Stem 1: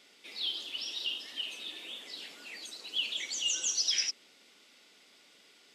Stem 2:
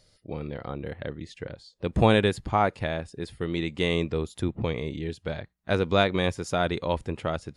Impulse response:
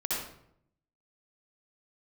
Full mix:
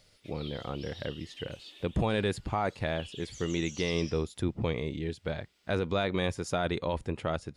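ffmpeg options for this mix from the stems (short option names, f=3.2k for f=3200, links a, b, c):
-filter_complex "[0:a]acrusher=bits=11:mix=0:aa=0.000001,volume=-10dB,asplit=2[a][b];[b]volume=-16dB[c];[1:a]alimiter=limit=-17.5dB:level=0:latency=1:release=15,volume=-2dB,asplit=2[d][e];[e]apad=whole_len=253323[f];[a][f]sidechaincompress=threshold=-35dB:ratio=8:attack=8.7:release=517[g];[2:a]atrim=start_sample=2205[h];[c][h]afir=irnorm=-1:irlink=0[i];[g][d][i]amix=inputs=3:normalize=0"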